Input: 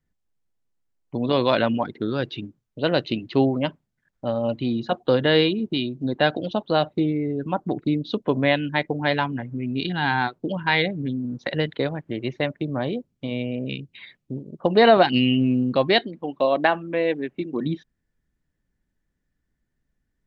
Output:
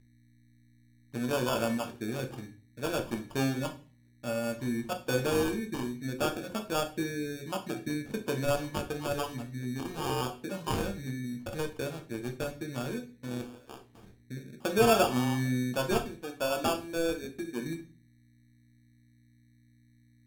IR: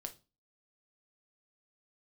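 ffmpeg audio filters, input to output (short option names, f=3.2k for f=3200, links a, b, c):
-filter_complex "[0:a]asettb=1/sr,asplit=3[a][b][c];[a]atrim=end=13.414[d];[b]atrim=start=13.41:end=13.92,asetpts=PTS-STARTPTS,afade=t=in:d=0.004:c=qsin,afade=t=out:st=0.506:d=0.004:c=qsin,highpass=1.1k[e];[c]atrim=start=13.916[f];[d][e]acrossfade=d=0.004:c1=hsin:c2=qsin[g];[g][f]acrossfade=d=0.004:c1=qsin:c2=hsin,aeval=exprs='val(0)+0.00447*(sin(2*PI*60*n/s)+sin(2*PI*2*60*n/s)/2+sin(2*PI*3*60*n/s)/3+sin(2*PI*4*60*n/s)/4+sin(2*PI*5*60*n/s)/5)':c=same,acrusher=samples=22:mix=1:aa=0.000001[h];[1:a]atrim=start_sample=2205,asetrate=32634,aresample=44100[i];[h][i]afir=irnorm=-1:irlink=0,volume=-8.5dB"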